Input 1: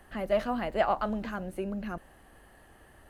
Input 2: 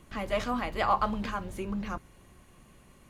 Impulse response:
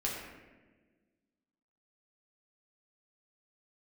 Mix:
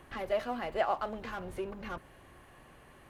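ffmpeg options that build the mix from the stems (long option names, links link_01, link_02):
-filter_complex "[0:a]highpass=170,volume=-3.5dB,asplit=2[link_01][link_02];[1:a]aemphasis=mode=reproduction:type=bsi,asplit=2[link_03][link_04];[link_04]highpass=frequency=720:poles=1,volume=29dB,asoftclip=type=tanh:threshold=-13.5dB[link_05];[link_03][link_05]amix=inputs=2:normalize=0,lowpass=frequency=3400:poles=1,volume=-6dB,volume=-18dB[link_06];[link_02]apad=whole_len=136531[link_07];[link_06][link_07]sidechaincompress=threshold=-36dB:ratio=8:attack=16:release=515[link_08];[link_01][link_08]amix=inputs=2:normalize=0,equalizer=frequency=200:width=6.3:gain=-11.5"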